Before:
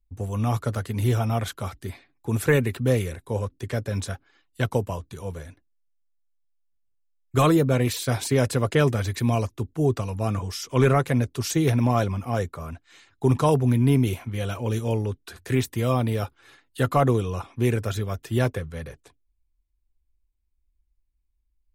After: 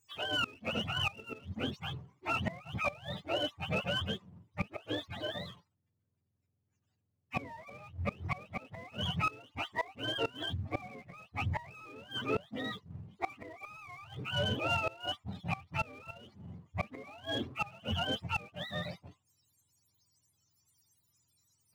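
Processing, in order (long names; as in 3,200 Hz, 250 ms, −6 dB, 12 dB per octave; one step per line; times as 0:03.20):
frequency axis turned over on the octave scale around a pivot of 550 Hz
high-shelf EQ 5,300 Hz −9.5 dB
gate with flip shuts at −18 dBFS, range −29 dB
in parallel at −3.5 dB: dead-zone distortion −45 dBFS
on the sum: power curve on the samples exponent 0.7
level −9 dB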